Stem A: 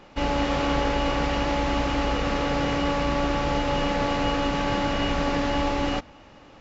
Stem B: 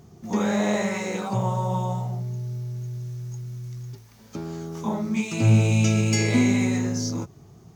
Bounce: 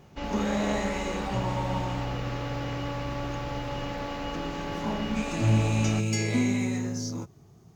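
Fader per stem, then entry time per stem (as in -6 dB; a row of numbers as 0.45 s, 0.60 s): -9.5 dB, -5.5 dB; 0.00 s, 0.00 s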